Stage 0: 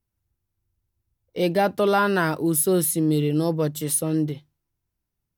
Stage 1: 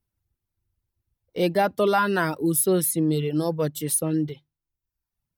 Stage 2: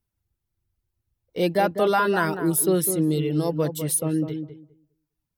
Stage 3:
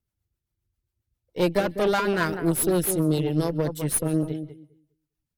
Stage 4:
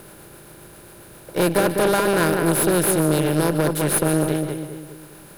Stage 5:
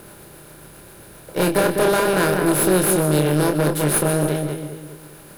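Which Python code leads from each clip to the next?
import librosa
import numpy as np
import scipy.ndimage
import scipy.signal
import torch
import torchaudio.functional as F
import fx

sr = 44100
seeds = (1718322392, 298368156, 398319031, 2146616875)

y1 = fx.dereverb_blind(x, sr, rt60_s=0.82)
y1 = fx.peak_eq(y1, sr, hz=6700.0, db=-2.5, octaves=0.41)
y2 = fx.echo_filtered(y1, sr, ms=202, feedback_pct=18, hz=1100.0, wet_db=-7.5)
y3 = fx.echo_wet_highpass(y2, sr, ms=148, feedback_pct=34, hz=1700.0, wet_db=-23)
y3 = fx.cheby_harmonics(y3, sr, harmonics=(6,), levels_db=(-18,), full_scale_db=-9.0)
y3 = fx.rotary(y3, sr, hz=7.5)
y4 = fx.bin_compress(y3, sr, power=0.4)
y5 = fx.doubler(y4, sr, ms=27.0, db=-5.5)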